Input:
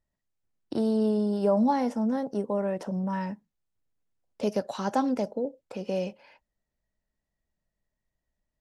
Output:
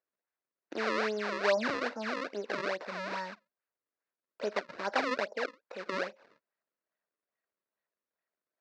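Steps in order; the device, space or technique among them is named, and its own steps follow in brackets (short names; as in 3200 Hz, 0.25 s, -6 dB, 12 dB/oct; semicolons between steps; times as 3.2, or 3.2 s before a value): circuit-bent sampling toy (decimation with a swept rate 33×, swing 160% 2.4 Hz; speaker cabinet 530–4600 Hz, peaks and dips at 820 Hz -5 dB, 1600 Hz +4 dB, 3200 Hz -9 dB)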